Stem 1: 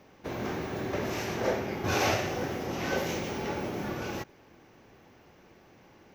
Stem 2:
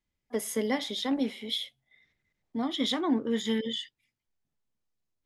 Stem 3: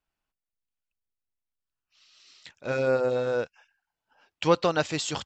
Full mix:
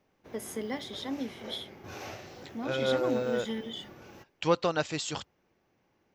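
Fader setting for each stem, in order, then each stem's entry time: -15.5 dB, -6.5 dB, -4.0 dB; 0.00 s, 0.00 s, 0.00 s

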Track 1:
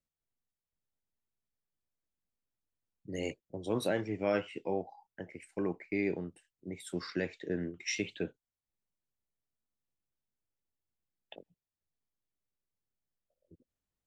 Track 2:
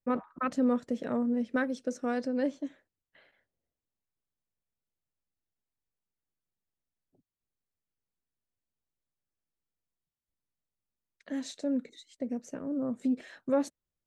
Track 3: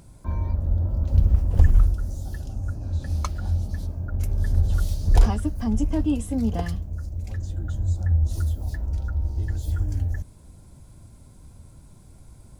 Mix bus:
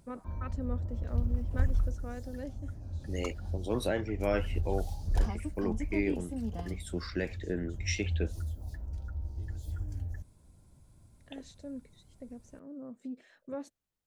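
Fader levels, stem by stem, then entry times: +0.5 dB, -12.0 dB, -12.0 dB; 0.00 s, 0.00 s, 0.00 s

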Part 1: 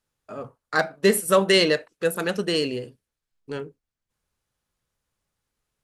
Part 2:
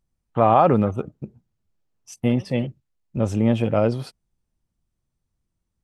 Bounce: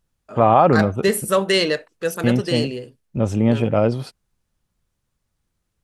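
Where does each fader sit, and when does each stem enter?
0.0 dB, +2.0 dB; 0.00 s, 0.00 s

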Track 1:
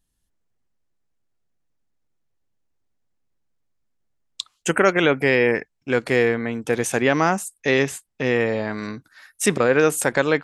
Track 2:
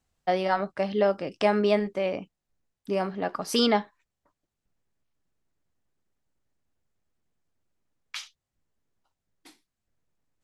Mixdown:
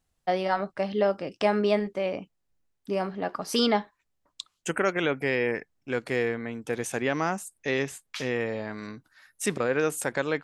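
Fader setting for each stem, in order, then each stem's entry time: -8.5 dB, -1.0 dB; 0.00 s, 0.00 s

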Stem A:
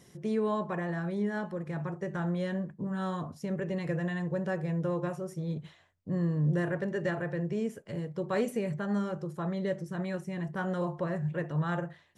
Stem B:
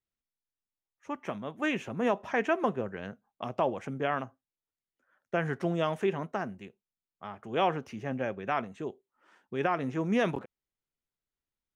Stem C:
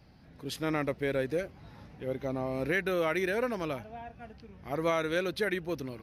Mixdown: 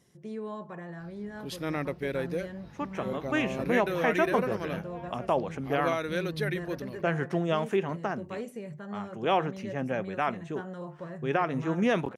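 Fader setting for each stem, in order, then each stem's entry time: -8.0 dB, +1.5 dB, -1.5 dB; 0.00 s, 1.70 s, 1.00 s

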